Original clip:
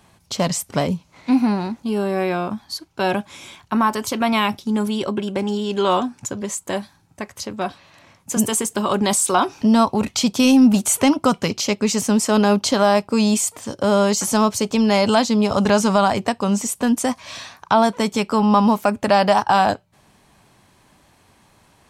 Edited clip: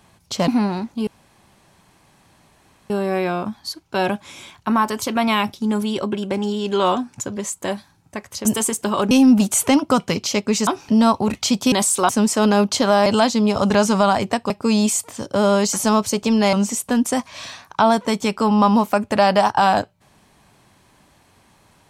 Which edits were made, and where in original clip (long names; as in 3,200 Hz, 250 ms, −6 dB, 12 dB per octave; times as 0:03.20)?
0:00.48–0:01.36: remove
0:01.95: splice in room tone 1.83 s
0:07.50–0:08.37: remove
0:09.03–0:09.40: swap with 0:10.45–0:12.01
0:15.01–0:16.45: move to 0:12.98